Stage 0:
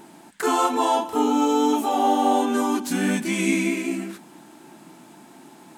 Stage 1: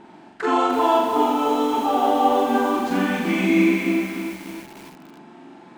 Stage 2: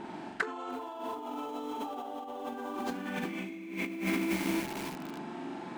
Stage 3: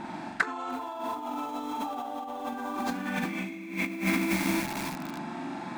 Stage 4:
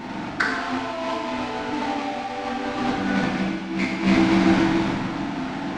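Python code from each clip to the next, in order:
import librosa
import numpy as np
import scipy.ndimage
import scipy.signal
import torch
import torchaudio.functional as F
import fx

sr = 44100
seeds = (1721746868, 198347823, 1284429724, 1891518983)

y1 = scipy.signal.sosfilt(scipy.signal.butter(2, 3100.0, 'lowpass', fs=sr, output='sos'), x)
y1 = fx.room_flutter(y1, sr, wall_m=7.3, rt60_s=0.8)
y1 = fx.echo_crushed(y1, sr, ms=297, feedback_pct=55, bits=6, wet_db=-7)
y2 = fx.over_compress(y1, sr, threshold_db=-31.0, ratio=-1.0)
y2 = y2 * librosa.db_to_amplitude(-6.0)
y3 = fx.peak_eq(y2, sr, hz=420.0, db=-13.0, octaves=0.47)
y3 = fx.notch(y3, sr, hz=3000.0, q=8.8)
y3 = y3 * librosa.db_to_amplitude(6.0)
y4 = fx.halfwave_hold(y3, sr)
y4 = scipy.ndimage.gaussian_filter1d(y4, 1.7, mode='constant')
y4 = fx.rev_plate(y4, sr, seeds[0], rt60_s=1.3, hf_ratio=0.9, predelay_ms=0, drr_db=-3.0)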